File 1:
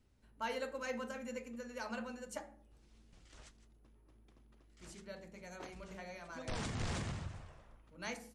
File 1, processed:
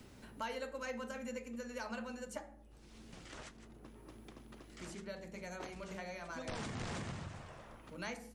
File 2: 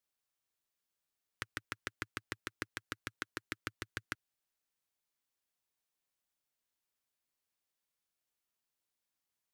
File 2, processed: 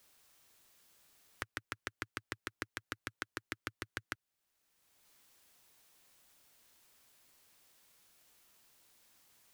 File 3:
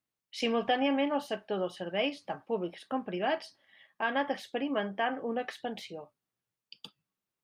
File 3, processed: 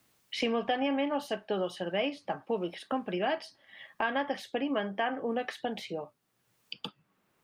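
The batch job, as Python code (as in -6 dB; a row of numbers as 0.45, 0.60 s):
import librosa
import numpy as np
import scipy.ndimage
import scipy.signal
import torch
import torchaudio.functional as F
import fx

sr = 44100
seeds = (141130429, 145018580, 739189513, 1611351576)

y = fx.band_squash(x, sr, depth_pct=70)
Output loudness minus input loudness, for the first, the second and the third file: -1.5, -0.5, -0.5 LU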